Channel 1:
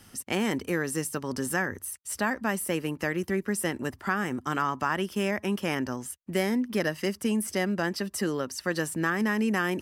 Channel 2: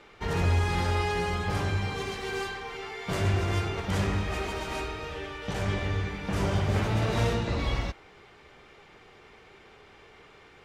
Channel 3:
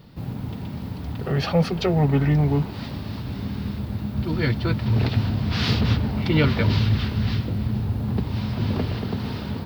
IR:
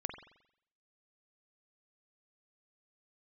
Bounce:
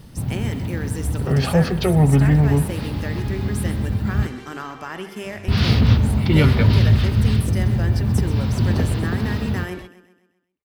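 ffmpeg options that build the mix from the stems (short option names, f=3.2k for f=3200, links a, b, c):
-filter_complex "[0:a]equalizer=f=1.1k:w=1.5:g=-5,bandreject=f=50:t=h:w=6,bandreject=f=100:t=h:w=6,bandreject=f=150:t=h:w=6,bandreject=f=200:t=h:w=6,volume=-6dB,asplit=4[a][b][c][d];[b]volume=-4dB[e];[c]volume=-9dB[f];[1:a]alimiter=level_in=2dB:limit=-24dB:level=0:latency=1,volume=-2dB,adelay=2150,volume=-7dB[g];[2:a]lowshelf=f=100:g=11.5,volume=-2dB,asplit=3[h][i][j];[h]atrim=end=4.27,asetpts=PTS-STARTPTS,afade=t=out:st=4.266:d=0.004:c=hsin[k];[i]atrim=start=4.27:end=5.48,asetpts=PTS-STARTPTS,volume=0[l];[j]atrim=start=5.48,asetpts=PTS-STARTPTS,afade=t=in:d=0.004:c=hsin[m];[k][l][m]concat=n=3:v=0:a=1,asplit=2[n][o];[o]volume=-6dB[p];[d]apad=whole_len=564240[q];[g][q]sidechaingate=range=-33dB:threshold=-46dB:ratio=16:detection=peak[r];[3:a]atrim=start_sample=2205[s];[e][p]amix=inputs=2:normalize=0[t];[t][s]afir=irnorm=-1:irlink=0[u];[f]aecho=0:1:130|260|390|520|650|780:1|0.46|0.212|0.0973|0.0448|0.0206[v];[a][r][n][u][v]amix=inputs=5:normalize=0"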